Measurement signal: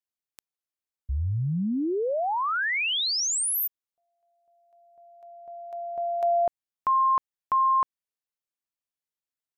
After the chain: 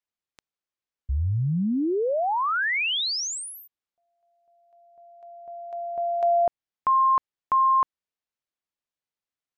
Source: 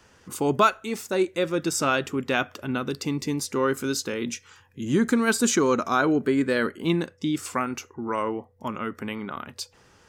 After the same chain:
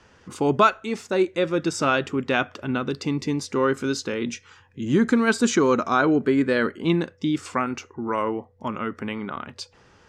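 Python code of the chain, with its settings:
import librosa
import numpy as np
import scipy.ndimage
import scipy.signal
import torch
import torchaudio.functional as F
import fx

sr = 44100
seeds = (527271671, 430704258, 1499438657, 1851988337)

y = fx.air_absorb(x, sr, metres=84.0)
y = y * librosa.db_to_amplitude(2.5)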